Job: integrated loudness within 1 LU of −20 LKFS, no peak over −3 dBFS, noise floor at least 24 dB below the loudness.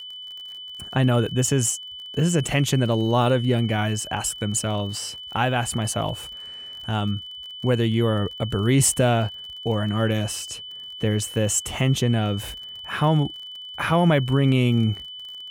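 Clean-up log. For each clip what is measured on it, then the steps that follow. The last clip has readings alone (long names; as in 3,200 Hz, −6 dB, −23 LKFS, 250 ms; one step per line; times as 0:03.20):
crackle rate 38 per second; interfering tone 3,000 Hz; level of the tone −35 dBFS; integrated loudness −23.0 LKFS; sample peak −8.0 dBFS; target loudness −20.0 LKFS
→ click removal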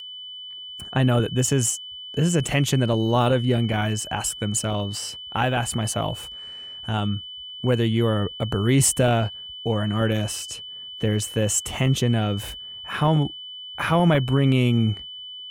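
crackle rate 3.0 per second; interfering tone 3,000 Hz; level of the tone −35 dBFS
→ notch filter 3,000 Hz, Q 30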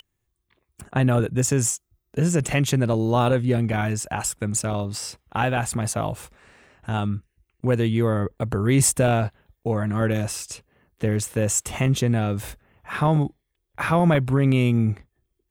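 interfering tone none found; integrated loudness −23.0 LKFS; sample peak −8.0 dBFS; target loudness −20.0 LKFS
→ level +3 dB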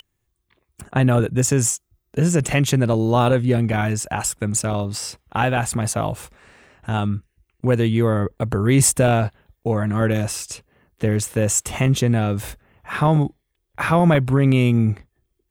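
integrated loudness −20.0 LKFS; sample peak −5.0 dBFS; background noise floor −74 dBFS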